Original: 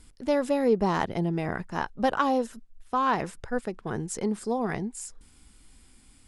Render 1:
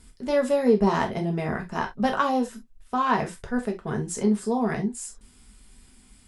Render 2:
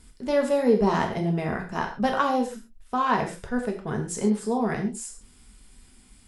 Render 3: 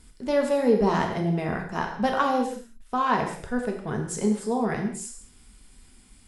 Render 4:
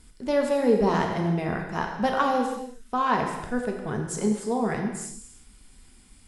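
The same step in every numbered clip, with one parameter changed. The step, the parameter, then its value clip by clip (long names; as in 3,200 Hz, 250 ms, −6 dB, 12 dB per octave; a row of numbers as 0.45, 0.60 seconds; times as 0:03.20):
reverb whose tail is shaped and stops, gate: 90, 160, 240, 380 milliseconds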